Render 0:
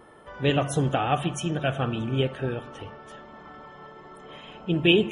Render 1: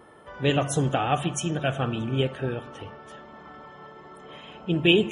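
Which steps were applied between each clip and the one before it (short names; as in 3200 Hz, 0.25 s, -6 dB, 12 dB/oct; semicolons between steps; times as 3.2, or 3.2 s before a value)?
dynamic EQ 7200 Hz, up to +7 dB, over -51 dBFS, Q 1.6; HPF 47 Hz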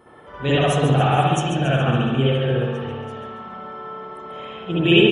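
on a send: feedback echo 0.139 s, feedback 48%, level -9.5 dB; on the sum: spring tank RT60 1.1 s, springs 59 ms, chirp 20 ms, DRR -7.5 dB; gain -2 dB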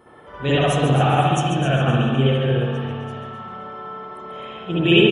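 feedback echo 0.256 s, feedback 30%, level -11.5 dB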